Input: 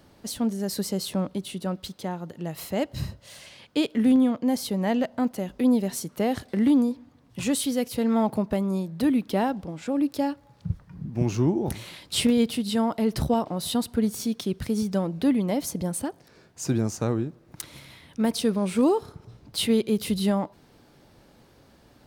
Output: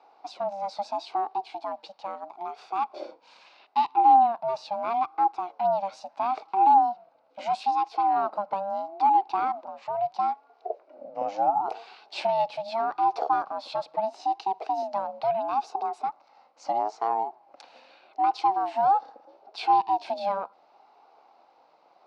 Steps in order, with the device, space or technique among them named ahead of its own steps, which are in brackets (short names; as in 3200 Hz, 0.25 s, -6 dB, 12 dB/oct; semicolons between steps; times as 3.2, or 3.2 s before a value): voice changer toy (ring modulator with a swept carrier 480 Hz, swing 20%, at 0.76 Hz; speaker cabinet 600–4300 Hz, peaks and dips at 810 Hz +10 dB, 1800 Hz -10 dB, 3300 Hz -9 dB)